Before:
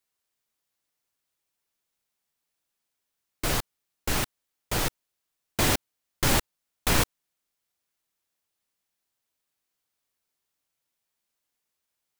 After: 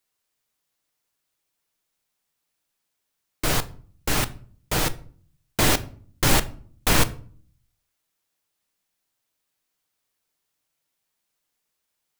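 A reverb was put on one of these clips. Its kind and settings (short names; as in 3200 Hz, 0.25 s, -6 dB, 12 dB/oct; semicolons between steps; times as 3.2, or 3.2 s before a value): shoebox room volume 480 m³, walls furnished, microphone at 0.5 m; gain +3.5 dB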